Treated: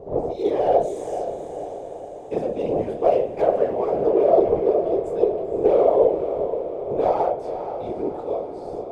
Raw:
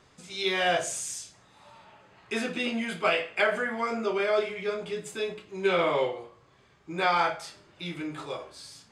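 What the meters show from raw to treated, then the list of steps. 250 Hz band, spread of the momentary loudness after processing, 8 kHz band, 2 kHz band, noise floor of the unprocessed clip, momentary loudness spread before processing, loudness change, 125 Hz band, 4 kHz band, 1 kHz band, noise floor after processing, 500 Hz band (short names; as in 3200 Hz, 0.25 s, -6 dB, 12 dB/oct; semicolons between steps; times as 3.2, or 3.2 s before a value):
+6.5 dB, 14 LU, under -10 dB, under -15 dB, -60 dBFS, 15 LU, +7.0 dB, +6.0 dB, under -15 dB, +5.0 dB, -35 dBFS, +11.0 dB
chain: wind noise 450 Hz -41 dBFS; one-sided clip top -29.5 dBFS; whisperiser; EQ curve 260 Hz 0 dB, 410 Hz +14 dB, 690 Hz +12 dB, 1500 Hz -16 dB; on a send: diffused feedback echo 0.5 s, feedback 59%, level -9 dB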